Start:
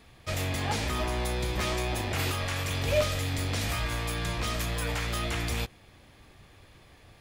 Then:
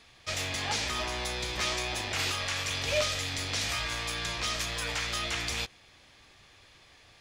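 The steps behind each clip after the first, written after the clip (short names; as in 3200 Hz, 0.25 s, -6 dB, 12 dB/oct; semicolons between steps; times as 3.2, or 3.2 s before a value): EQ curve 190 Hz 0 dB, 6000 Hz +15 dB, 14000 Hz 0 dB; gain -9 dB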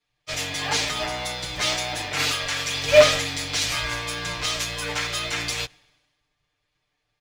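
comb 6.7 ms, depth 86%; in parallel at -5.5 dB: short-mantissa float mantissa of 2-bit; on the sum: three-band expander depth 100%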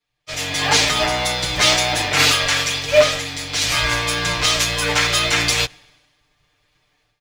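AGC gain up to 13 dB; gain -1 dB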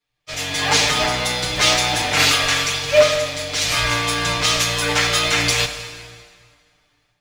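plate-style reverb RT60 2 s, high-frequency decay 0.85×, DRR 7 dB; gain -1 dB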